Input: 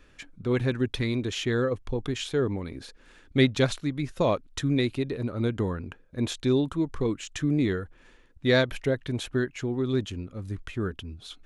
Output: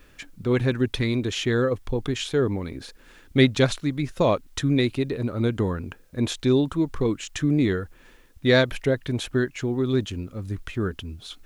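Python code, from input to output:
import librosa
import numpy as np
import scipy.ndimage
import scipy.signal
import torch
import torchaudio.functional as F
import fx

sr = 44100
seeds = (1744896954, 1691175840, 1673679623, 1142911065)

y = fx.quant_dither(x, sr, seeds[0], bits=12, dither='triangular')
y = y * librosa.db_to_amplitude(3.5)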